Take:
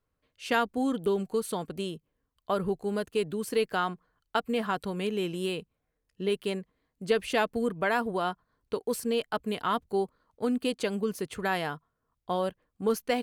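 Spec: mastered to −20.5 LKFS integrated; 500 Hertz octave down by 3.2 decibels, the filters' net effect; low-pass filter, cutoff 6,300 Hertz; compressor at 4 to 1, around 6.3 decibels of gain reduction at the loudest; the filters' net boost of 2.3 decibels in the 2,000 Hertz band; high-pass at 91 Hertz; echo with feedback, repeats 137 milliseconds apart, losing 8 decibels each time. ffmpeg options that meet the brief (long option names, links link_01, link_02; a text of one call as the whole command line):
ffmpeg -i in.wav -af "highpass=91,lowpass=6300,equalizer=frequency=500:width_type=o:gain=-4,equalizer=frequency=2000:width_type=o:gain=3.5,acompressor=threshold=-29dB:ratio=4,aecho=1:1:137|274|411|548|685:0.398|0.159|0.0637|0.0255|0.0102,volume=14dB" out.wav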